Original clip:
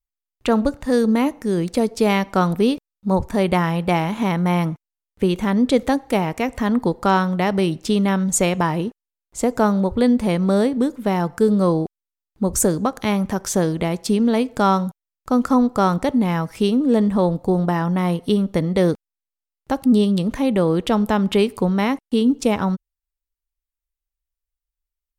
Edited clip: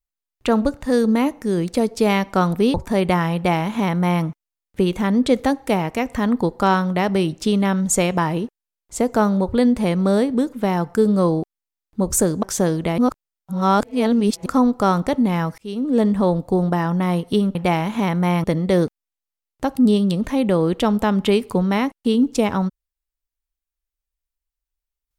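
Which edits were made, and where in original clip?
2.74–3.17 cut
3.78–4.67 copy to 18.51
12.86–13.39 cut
13.94–15.42 reverse
16.54–16.96 fade in

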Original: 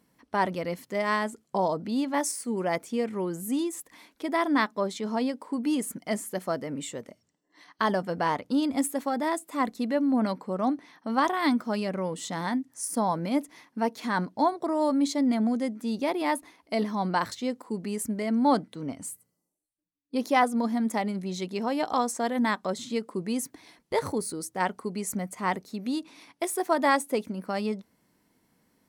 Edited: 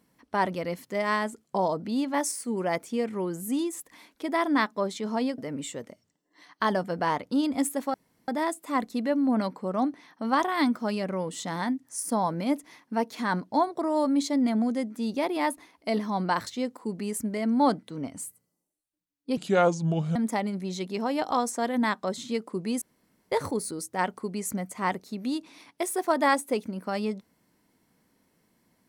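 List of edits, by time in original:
5.38–6.57 cut
9.13 insert room tone 0.34 s
20.22–20.77 speed 70%
23.43–23.93 room tone

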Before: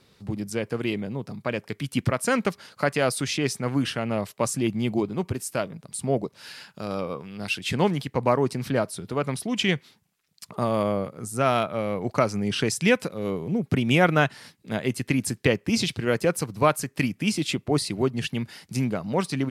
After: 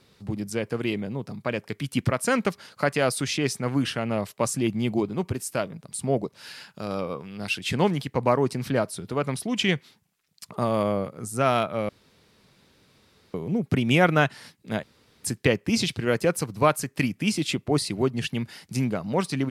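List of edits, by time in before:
11.89–13.34 room tone
14.83–15.24 room tone

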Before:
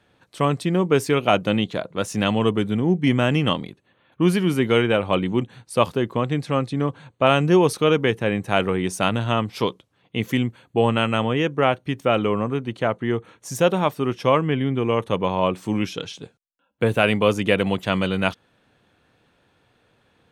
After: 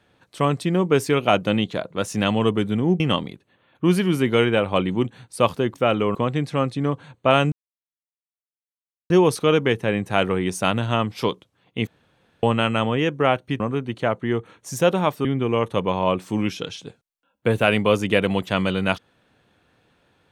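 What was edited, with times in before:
3–3.37 cut
7.48 insert silence 1.58 s
10.25–10.81 room tone
11.98–12.39 move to 6.11
14.04–14.61 cut

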